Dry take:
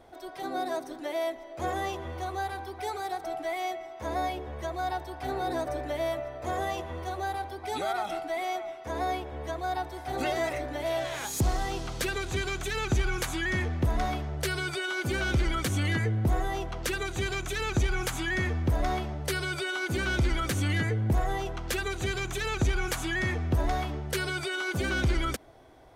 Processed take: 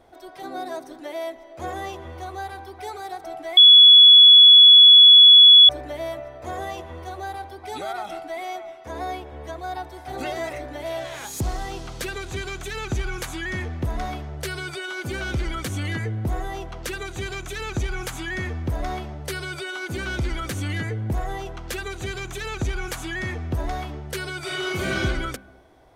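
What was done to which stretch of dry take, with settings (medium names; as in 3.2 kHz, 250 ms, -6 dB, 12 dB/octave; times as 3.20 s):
3.57–5.69 s: bleep 3.39 kHz -6 dBFS
24.40–25.03 s: reverb throw, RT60 0.98 s, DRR -5 dB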